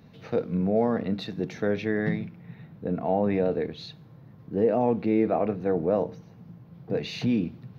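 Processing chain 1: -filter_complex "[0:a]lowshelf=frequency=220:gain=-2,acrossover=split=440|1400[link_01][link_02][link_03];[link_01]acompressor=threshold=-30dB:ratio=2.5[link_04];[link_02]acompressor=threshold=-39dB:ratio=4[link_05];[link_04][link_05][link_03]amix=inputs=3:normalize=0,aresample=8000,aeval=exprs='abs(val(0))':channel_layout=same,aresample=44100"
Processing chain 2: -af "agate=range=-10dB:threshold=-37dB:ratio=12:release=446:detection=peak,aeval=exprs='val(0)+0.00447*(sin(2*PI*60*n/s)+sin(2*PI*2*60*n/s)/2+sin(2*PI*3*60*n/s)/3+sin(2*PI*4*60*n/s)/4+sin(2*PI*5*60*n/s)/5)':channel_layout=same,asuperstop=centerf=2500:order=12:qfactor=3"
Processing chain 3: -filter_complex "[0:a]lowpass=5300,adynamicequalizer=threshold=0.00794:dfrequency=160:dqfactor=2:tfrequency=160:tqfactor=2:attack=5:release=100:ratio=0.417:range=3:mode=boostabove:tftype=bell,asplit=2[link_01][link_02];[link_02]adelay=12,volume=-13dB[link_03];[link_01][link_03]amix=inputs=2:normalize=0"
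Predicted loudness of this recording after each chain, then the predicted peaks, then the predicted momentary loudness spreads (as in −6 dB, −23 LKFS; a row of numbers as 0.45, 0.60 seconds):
−37.0, −27.0, −25.5 LKFS; −18.0, −12.0, −10.5 dBFS; 19, 10, 19 LU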